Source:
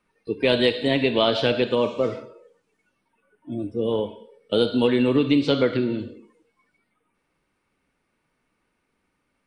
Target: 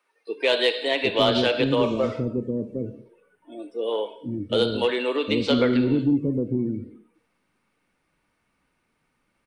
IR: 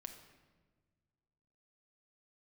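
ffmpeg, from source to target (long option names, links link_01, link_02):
-filter_complex "[0:a]acrossover=split=380[link_01][link_02];[link_01]adelay=760[link_03];[link_03][link_02]amix=inputs=2:normalize=0,aeval=exprs='0.473*(cos(1*acos(clip(val(0)/0.473,-1,1)))-cos(1*PI/2))+0.0211*(cos(5*acos(clip(val(0)/0.473,-1,1)))-cos(5*PI/2))':channel_layout=same"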